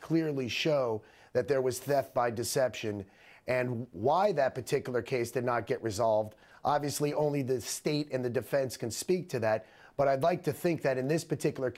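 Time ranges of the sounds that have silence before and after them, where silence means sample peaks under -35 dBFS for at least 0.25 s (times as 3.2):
1.35–3.02
3.48–6.28
6.65–9.58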